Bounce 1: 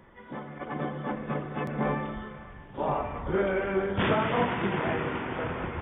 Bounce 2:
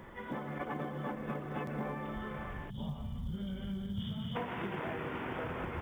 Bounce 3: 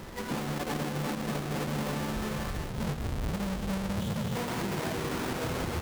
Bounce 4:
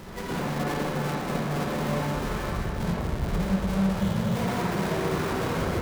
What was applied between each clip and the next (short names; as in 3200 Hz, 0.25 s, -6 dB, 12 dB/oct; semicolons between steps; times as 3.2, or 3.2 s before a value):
spectral gain 2.7–4.36, 250–2900 Hz -23 dB; compressor 8:1, threshold -40 dBFS, peak gain reduction 18.5 dB; companded quantiser 8-bit; gain +4.5 dB
half-waves squared off; limiter -30.5 dBFS, peak gain reduction 5.5 dB; gain +3 dB
reverb RT60 0.95 s, pre-delay 43 ms, DRR -3 dB